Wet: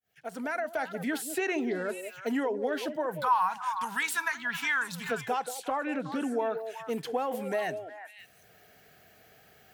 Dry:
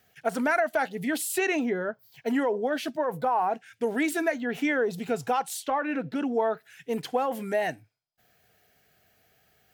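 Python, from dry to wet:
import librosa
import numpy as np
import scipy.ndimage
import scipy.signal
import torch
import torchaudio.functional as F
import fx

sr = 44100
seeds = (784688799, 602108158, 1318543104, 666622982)

y = fx.fade_in_head(x, sr, length_s=1.08)
y = fx.curve_eq(y, sr, hz=(180.0, 320.0, 590.0, 1000.0, 2100.0, 3700.0), db=(0, -23, -23, 13, 4, 10), at=(3.19, 5.1), fade=0.02)
y = fx.echo_stepped(y, sr, ms=182, hz=460.0, octaves=1.4, feedback_pct=70, wet_db=-6.5)
y = fx.band_squash(y, sr, depth_pct=40)
y = y * 10.0 ** (-4.0 / 20.0)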